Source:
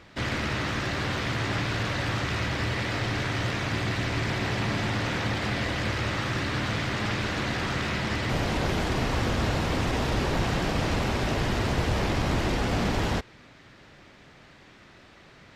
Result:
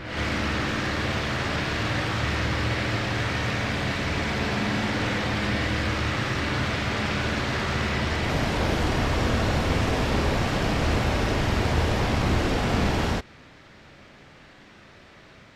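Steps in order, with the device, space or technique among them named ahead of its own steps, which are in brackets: reverse reverb (reverse; reverberation RT60 1.2 s, pre-delay 30 ms, DRR 1 dB; reverse)

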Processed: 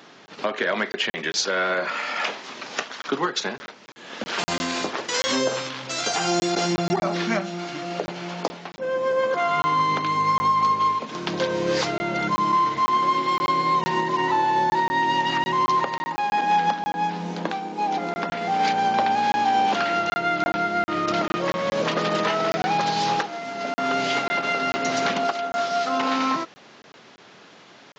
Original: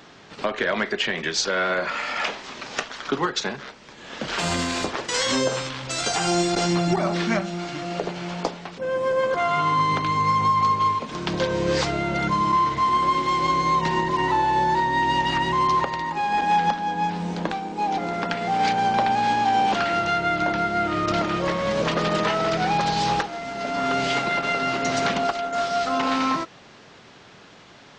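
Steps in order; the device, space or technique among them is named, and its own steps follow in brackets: call with lost packets (high-pass 180 Hz 12 dB/octave; resampled via 16 kHz; lost packets of 20 ms random); 13.17–13.76 s: band-stop 6.3 kHz, Q 8.7

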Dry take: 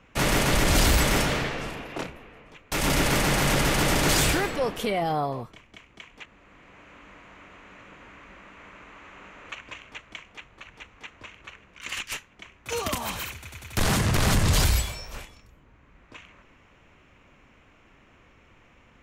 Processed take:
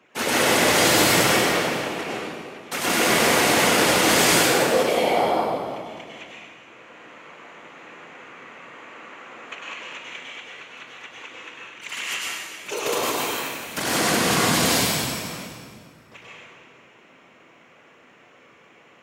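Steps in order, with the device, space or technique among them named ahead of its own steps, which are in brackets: whispering ghost (whisper effect; high-pass 270 Hz 12 dB/octave; reverberation RT60 1.9 s, pre-delay 94 ms, DRR -5.5 dB)

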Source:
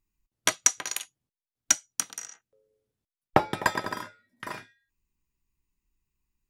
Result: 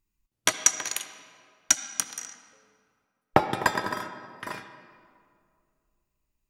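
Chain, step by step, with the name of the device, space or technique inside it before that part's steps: filtered reverb send (on a send: high-pass 160 Hz 12 dB/octave + low-pass 5.8 kHz 12 dB/octave + reverberation RT60 2.2 s, pre-delay 59 ms, DRR 10 dB); on the sum: trim +1 dB

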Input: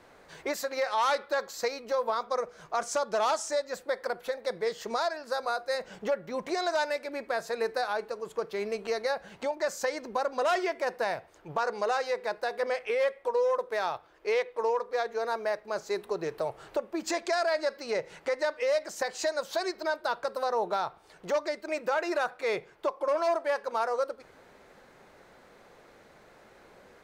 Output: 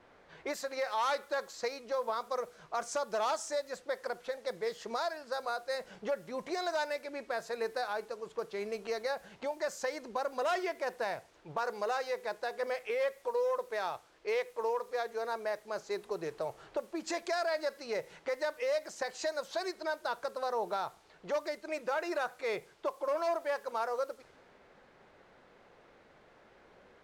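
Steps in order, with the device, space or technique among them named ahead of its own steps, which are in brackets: cassette deck with a dynamic noise filter (white noise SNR 28 dB; level-controlled noise filter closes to 2.7 kHz, open at -27 dBFS); trim -5 dB

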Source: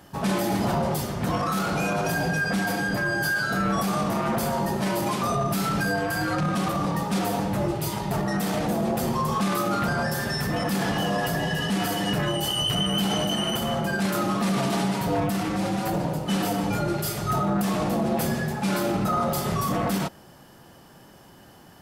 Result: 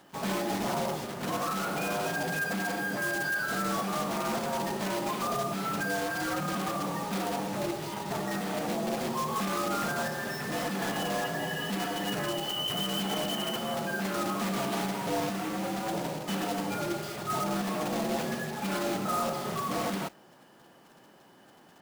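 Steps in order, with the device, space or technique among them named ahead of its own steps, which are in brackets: early digital voice recorder (band-pass 210–3600 Hz; block-companded coder 3-bit); trim -5 dB

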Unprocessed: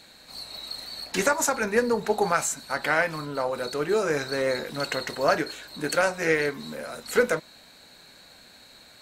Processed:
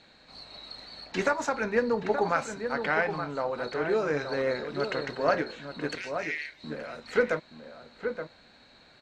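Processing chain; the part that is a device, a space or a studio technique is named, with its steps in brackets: 5.95–6.64 s: steep high-pass 1.9 kHz 48 dB/octave; shout across a valley (distance through air 160 m; echo from a far wall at 150 m, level -7 dB); trim -2.5 dB

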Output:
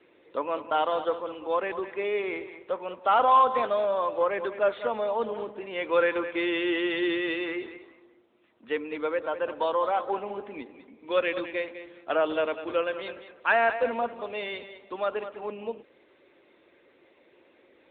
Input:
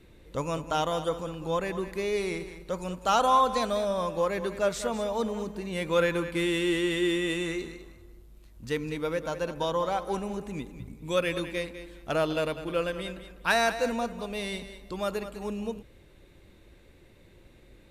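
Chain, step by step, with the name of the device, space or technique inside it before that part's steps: Chebyshev band-pass 230–3900 Hz, order 3; telephone (band-pass 380–3600 Hz; saturation -15 dBFS, distortion -22 dB; trim +4.5 dB; AMR-NB 10.2 kbps 8 kHz)

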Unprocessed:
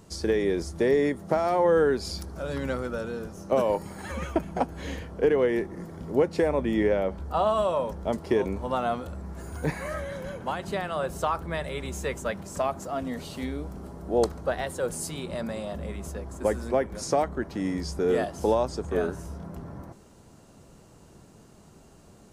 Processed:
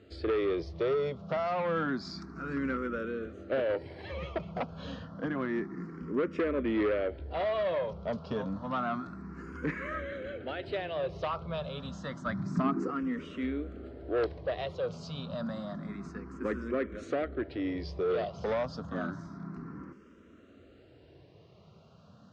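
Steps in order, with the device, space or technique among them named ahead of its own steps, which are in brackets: barber-pole phaser into a guitar amplifier (barber-pole phaser +0.29 Hz; saturation -24.5 dBFS, distortion -12 dB; cabinet simulation 80–4400 Hz, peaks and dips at 280 Hz +3 dB, 850 Hz -9 dB, 1.3 kHz +5 dB); 12.25–12.90 s: peaking EQ 65 Hz -> 460 Hz +15 dB 1.4 oct

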